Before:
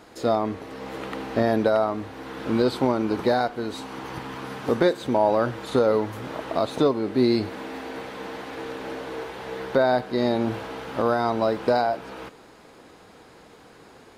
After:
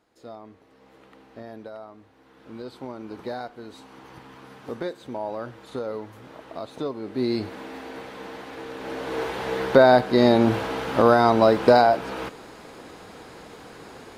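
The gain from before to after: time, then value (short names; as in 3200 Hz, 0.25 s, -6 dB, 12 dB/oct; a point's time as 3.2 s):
2.29 s -19 dB
3.34 s -11 dB
6.73 s -11 dB
7.42 s -3 dB
8.7 s -3 dB
9.25 s +6 dB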